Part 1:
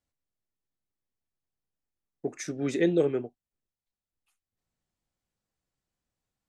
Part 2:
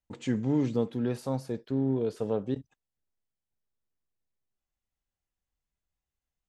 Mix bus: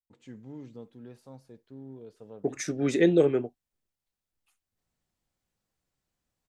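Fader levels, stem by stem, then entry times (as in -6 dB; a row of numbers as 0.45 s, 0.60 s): +3.0 dB, -17.0 dB; 0.20 s, 0.00 s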